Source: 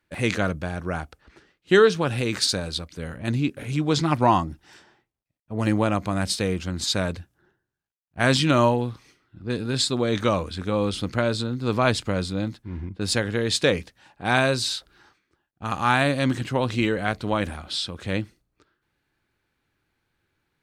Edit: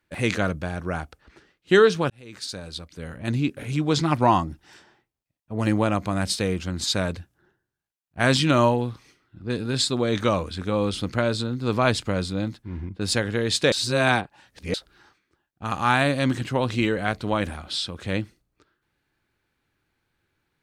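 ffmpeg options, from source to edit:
-filter_complex "[0:a]asplit=4[s0][s1][s2][s3];[s0]atrim=end=2.1,asetpts=PTS-STARTPTS,afade=t=out:st=2.096:d=0.004:c=hsin[s4];[s1]atrim=start=2.1:end=13.722,asetpts=PTS-STARTPTS,afade=t=in:d=1.28[s5];[s2]atrim=start=13.718:end=14.742,asetpts=PTS-STARTPTS,areverse[s6];[s3]atrim=start=14.738[s7];[s4][s5]concat=n=2:v=0:a=1[s8];[s8][s6]acrossfade=d=0.004:c1=hsin:c2=hsin[s9];[s9][s7]acrossfade=d=0.004:c1=hsin:c2=hsin"

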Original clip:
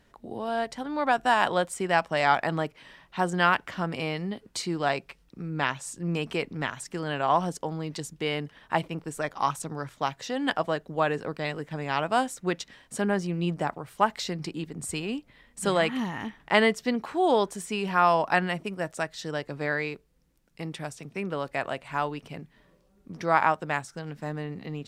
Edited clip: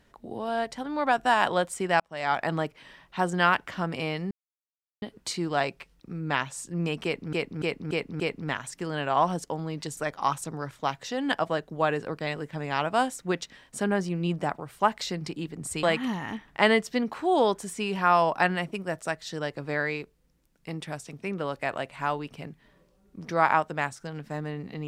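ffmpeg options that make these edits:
-filter_complex "[0:a]asplit=9[s0][s1][s2][s3][s4][s5][s6][s7][s8];[s0]atrim=end=2,asetpts=PTS-STARTPTS,afade=t=out:st=1.996:d=0.004:c=hsin[s9];[s1]atrim=start=2:end=4.31,asetpts=PTS-STARTPTS,afade=t=in:d=0.5,afade=t=out:st=2.306:d=0.004:c=hsin,apad=pad_dur=0.71[s10];[s2]atrim=start=4.31:end=6.622,asetpts=PTS-STARTPTS,afade=t=in:d=0.004:c=hsin[s11];[s3]atrim=start=6.328:end=6.622[s12];[s4]atrim=start=6.328:end=6.622[s13];[s5]atrim=start=6.328:end=6.622[s14];[s6]atrim=start=6.328:end=8.102[s15];[s7]atrim=start=9.148:end=15.012[s16];[s8]atrim=start=15.748[s17];[s9][s10][s11]concat=n=3:v=0:a=1[s18];[s18][s12]acrossfade=d=0.004:c1=hsin:c2=hsin[s19];[s19][s13]acrossfade=d=0.004:c1=hsin:c2=hsin[s20];[s20][s14]acrossfade=d=0.004:c1=hsin:c2=hsin[s21];[s21][s15]acrossfade=d=0.004:c1=hsin:c2=hsin[s22];[s22][s16]acrossfade=d=0.004:c1=hsin:c2=hsin[s23];[s23][s17]acrossfade=d=0.004:c1=hsin:c2=hsin"

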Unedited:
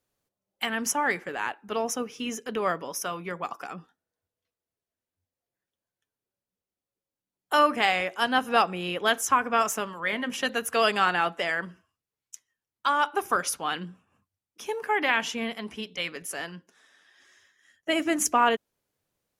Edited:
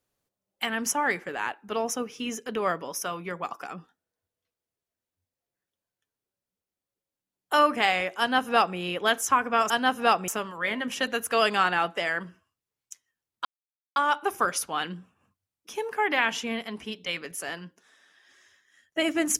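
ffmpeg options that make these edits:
-filter_complex "[0:a]asplit=4[s0][s1][s2][s3];[s0]atrim=end=9.702[s4];[s1]atrim=start=8.188:end=8.772[s5];[s2]atrim=start=9.698:end=12.87,asetpts=PTS-STARTPTS,afade=t=out:st=3.168:d=0.004:c=hsin,apad=pad_dur=0.51[s6];[s3]atrim=start=12.87,asetpts=PTS-STARTPTS,afade=t=in:d=0.004:c=hsin[s7];[s4][s5]acrossfade=d=0.004:c1=hsin:c2=hsin[s8];[s6][s7]concat=n=2:v=0:a=1[s9];[s8][s9]acrossfade=d=0.004:c1=hsin:c2=hsin"

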